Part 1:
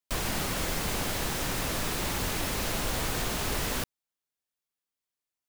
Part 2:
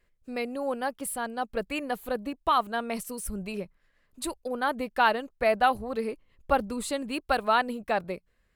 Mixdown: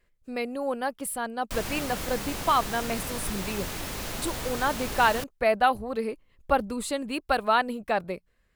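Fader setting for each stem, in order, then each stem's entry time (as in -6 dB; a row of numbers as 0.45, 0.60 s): -3.5, +1.0 dB; 1.40, 0.00 s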